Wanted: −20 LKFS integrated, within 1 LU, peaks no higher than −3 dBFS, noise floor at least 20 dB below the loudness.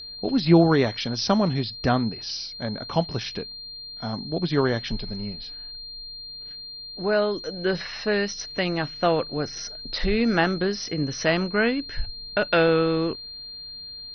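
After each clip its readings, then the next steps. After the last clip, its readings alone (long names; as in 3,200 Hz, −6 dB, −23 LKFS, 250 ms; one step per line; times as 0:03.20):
interfering tone 4,200 Hz; level of the tone −36 dBFS; integrated loudness −24.5 LKFS; sample peak −5.5 dBFS; target loudness −20.0 LKFS
→ notch filter 4,200 Hz, Q 30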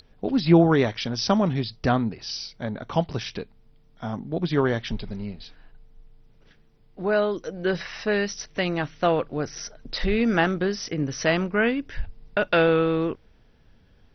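interfering tone none found; integrated loudness −24.5 LKFS; sample peak −5.5 dBFS; target loudness −20.0 LKFS
→ level +4.5 dB
brickwall limiter −3 dBFS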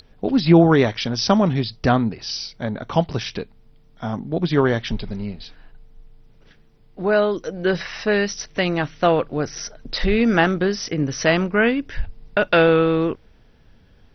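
integrated loudness −20.5 LKFS; sample peak −3.0 dBFS; background noise floor −52 dBFS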